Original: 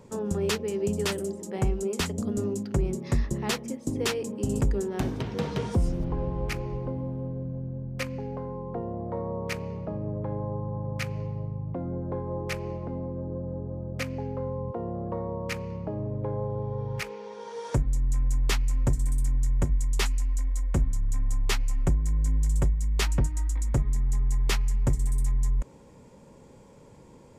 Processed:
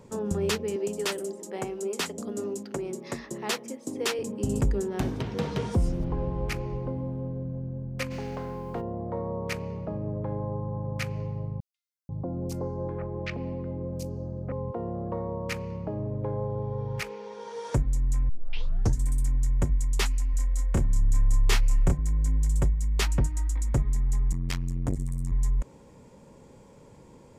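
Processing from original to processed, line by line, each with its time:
0.76–4.19 s: high-pass 300 Hz
8.10–8.80 s: spectral contrast reduction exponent 0.67
11.60–14.52 s: three bands offset in time highs, lows, mids 490/770 ms, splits 1.2/4.9 kHz
18.29 s: tape start 0.70 s
20.31–21.99 s: doubling 29 ms -3 dB
24.32–25.32 s: transformer saturation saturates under 200 Hz

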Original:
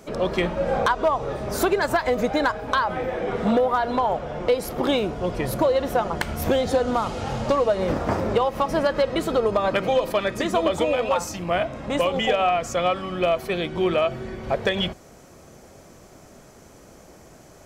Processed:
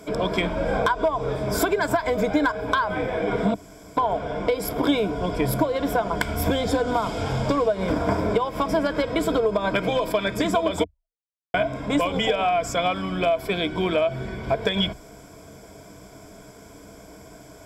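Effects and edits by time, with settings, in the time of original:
3.54–3.97 s: room tone
10.84–11.54 s: mute
whole clip: rippled EQ curve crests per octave 1.7, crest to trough 11 dB; compression, threshold -19 dBFS; peaking EQ 290 Hz +2.5 dB 0.3 oct; trim +1 dB

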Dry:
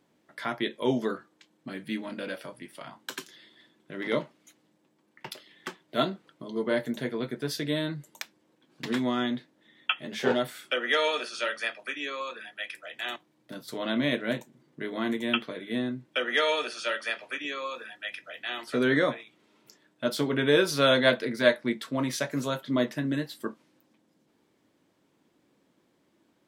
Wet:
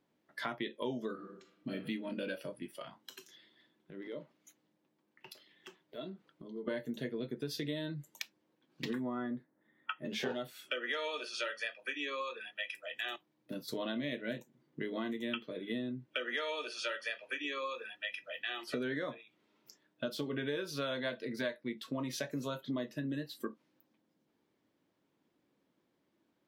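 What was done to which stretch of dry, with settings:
1.12–1.74 s: reverb throw, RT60 0.94 s, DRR 2.5 dB
2.96–6.68 s: compression 2.5:1, threshold -46 dBFS
8.93–10.05 s: high-order bell 4 kHz -14.5 dB
whole clip: peaking EQ 8.6 kHz -7 dB 0.78 oct; spectral noise reduction 10 dB; compression 6:1, threshold -36 dBFS; trim +1 dB

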